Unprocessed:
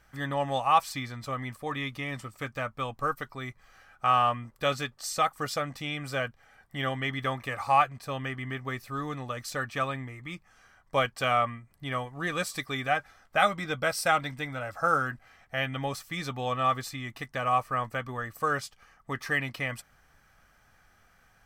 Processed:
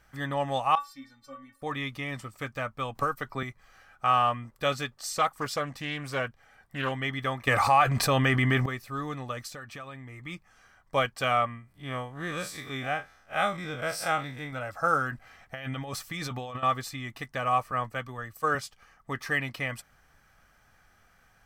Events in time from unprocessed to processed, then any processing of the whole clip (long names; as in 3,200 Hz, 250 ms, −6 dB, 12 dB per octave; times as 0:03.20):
0:00.75–0:01.62: stiff-string resonator 270 Hz, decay 0.26 s, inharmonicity 0.008
0:02.95–0:03.43: multiband upward and downward compressor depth 100%
0:05.00–0:06.92: highs frequency-modulated by the lows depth 0.25 ms
0:07.47–0:08.66: envelope flattener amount 70%
0:09.47–0:10.22: downward compressor 4 to 1, threshold −40 dBFS
0:11.46–0:14.53: spectrum smeared in time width 82 ms
0:15.12–0:16.63: compressor whose output falls as the input rises −36 dBFS
0:17.71–0:18.55: multiband upward and downward expander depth 70%